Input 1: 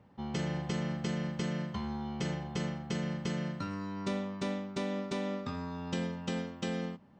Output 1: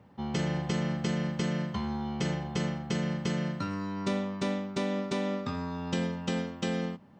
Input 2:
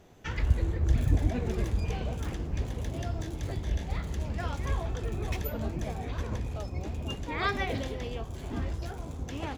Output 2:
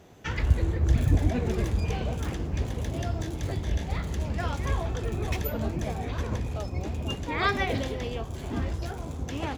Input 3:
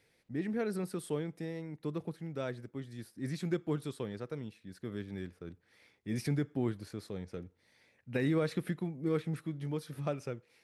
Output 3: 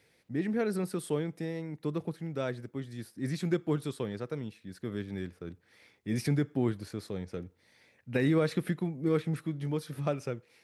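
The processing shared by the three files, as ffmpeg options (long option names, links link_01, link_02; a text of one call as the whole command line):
ffmpeg -i in.wav -af "highpass=50,volume=4dB" out.wav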